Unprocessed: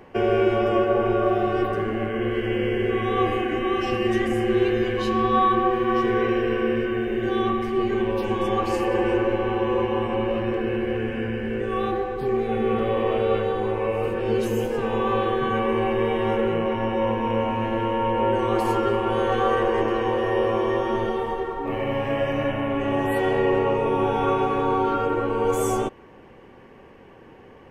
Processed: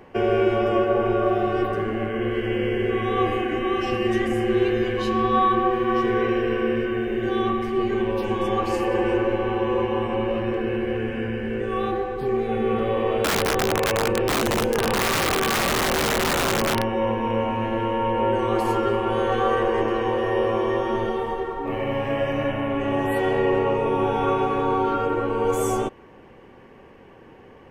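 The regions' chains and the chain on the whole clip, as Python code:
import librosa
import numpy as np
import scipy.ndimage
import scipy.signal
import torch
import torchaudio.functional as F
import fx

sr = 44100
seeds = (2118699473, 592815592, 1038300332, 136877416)

y = fx.chain(x, sr, fx.high_shelf(hz=4900.0, db=-9.0),
    fx.overflow_wrap(gain_db=17.5),
    fx.env_flatten(amount_pct=100), at=(13.24, 16.82))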